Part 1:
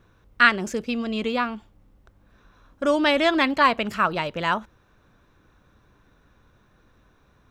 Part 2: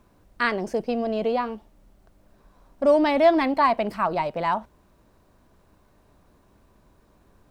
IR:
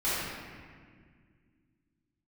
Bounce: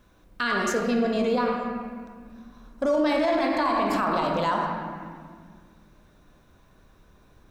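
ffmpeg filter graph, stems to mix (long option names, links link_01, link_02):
-filter_complex "[0:a]highshelf=frequency=2700:gain=10.5,volume=-6.5dB,asplit=2[link_01][link_02];[link_02]volume=-16.5dB[link_03];[1:a]volume=-6dB,asplit=3[link_04][link_05][link_06];[link_05]volume=-8.5dB[link_07];[link_06]apad=whole_len=330864[link_08];[link_01][link_08]sidechaincompress=threshold=-31dB:ratio=8:attack=16:release=218[link_09];[2:a]atrim=start_sample=2205[link_10];[link_03][link_07]amix=inputs=2:normalize=0[link_11];[link_11][link_10]afir=irnorm=-1:irlink=0[link_12];[link_09][link_04][link_12]amix=inputs=3:normalize=0,alimiter=limit=-15.5dB:level=0:latency=1:release=35"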